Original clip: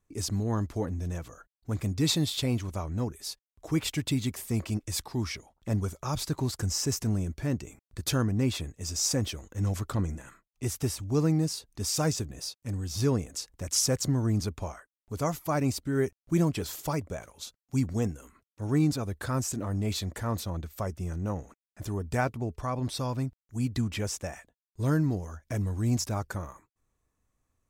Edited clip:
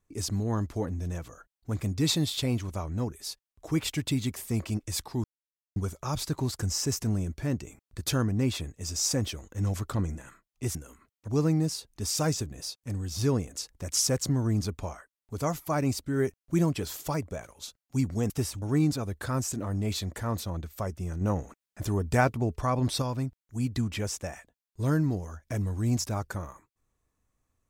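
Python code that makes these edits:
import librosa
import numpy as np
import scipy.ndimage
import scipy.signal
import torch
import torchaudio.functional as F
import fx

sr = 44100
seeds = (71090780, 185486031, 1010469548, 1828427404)

y = fx.edit(x, sr, fx.silence(start_s=5.24, length_s=0.52),
    fx.swap(start_s=10.75, length_s=0.32, other_s=18.09, other_length_s=0.53),
    fx.clip_gain(start_s=21.21, length_s=1.81, db=4.5), tone=tone)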